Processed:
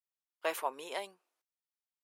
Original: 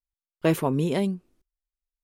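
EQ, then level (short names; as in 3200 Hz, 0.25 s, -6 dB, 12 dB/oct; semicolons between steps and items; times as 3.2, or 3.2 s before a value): ladder high-pass 590 Hz, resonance 25%; 0.0 dB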